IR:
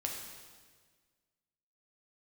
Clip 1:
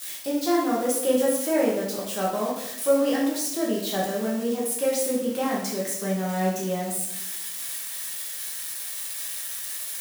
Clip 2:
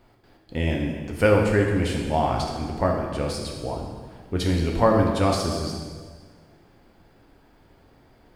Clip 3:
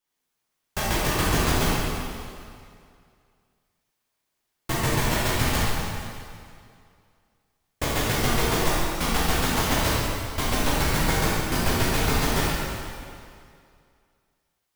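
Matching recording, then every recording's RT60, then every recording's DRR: 2; 0.85 s, 1.6 s, 2.3 s; -4.5 dB, 0.0 dB, -9.0 dB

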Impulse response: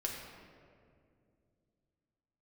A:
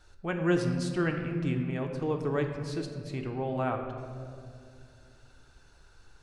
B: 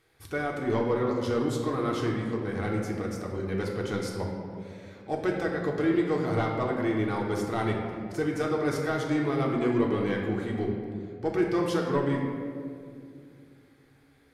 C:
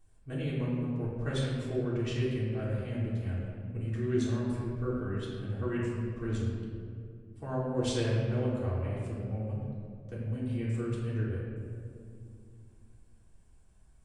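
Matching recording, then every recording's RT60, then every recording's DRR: B; 2.4 s, 2.3 s, 2.3 s; 3.0 dB, -2.0 dB, -9.0 dB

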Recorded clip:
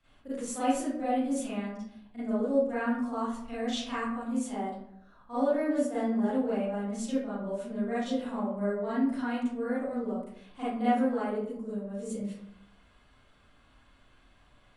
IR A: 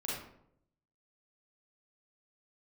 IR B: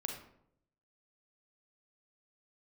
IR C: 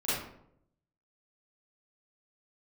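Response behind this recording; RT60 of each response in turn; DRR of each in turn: C; 0.75 s, 0.75 s, 0.75 s; -6.5 dB, 2.0 dB, -13.0 dB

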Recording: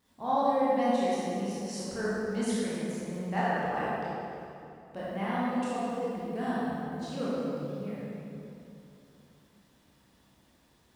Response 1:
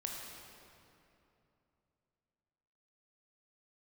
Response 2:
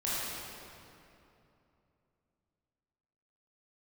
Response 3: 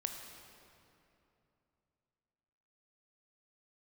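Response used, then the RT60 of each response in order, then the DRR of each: 2; 2.9 s, 2.8 s, 2.9 s; -1.0 dB, -9.5 dB, 3.5 dB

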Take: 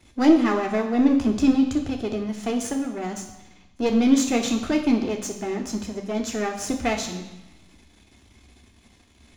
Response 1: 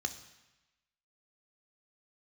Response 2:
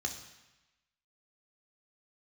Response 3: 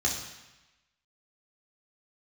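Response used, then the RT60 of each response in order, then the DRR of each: 2; 1.0 s, 1.0 s, 1.0 s; 7.5 dB, 3.0 dB, -2.5 dB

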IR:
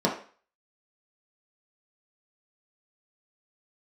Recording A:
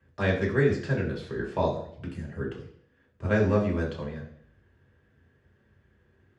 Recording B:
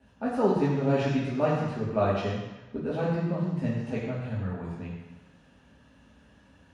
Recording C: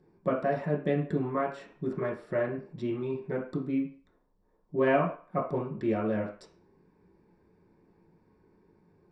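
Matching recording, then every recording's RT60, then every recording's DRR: C; 0.60 s, 1.0 s, 0.40 s; -4.0 dB, -6.0 dB, -3.5 dB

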